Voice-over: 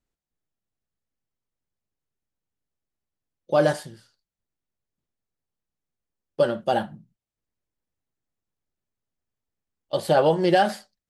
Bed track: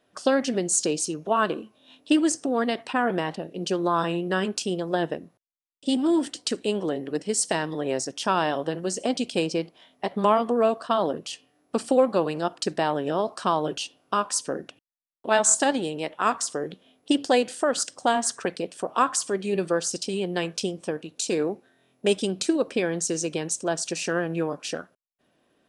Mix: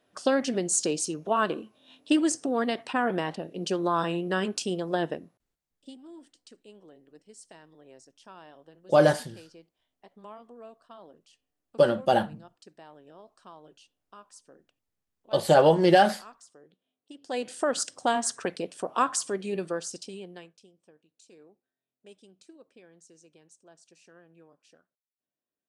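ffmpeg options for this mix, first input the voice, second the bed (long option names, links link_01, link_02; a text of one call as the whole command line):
ffmpeg -i stem1.wav -i stem2.wav -filter_complex "[0:a]adelay=5400,volume=0.5dB[link_01];[1:a]volume=20dB,afade=type=out:start_time=5.07:duration=0.88:silence=0.0707946,afade=type=in:start_time=17.21:duration=0.41:silence=0.0749894,afade=type=out:start_time=19.17:duration=1.39:silence=0.0473151[link_02];[link_01][link_02]amix=inputs=2:normalize=0" out.wav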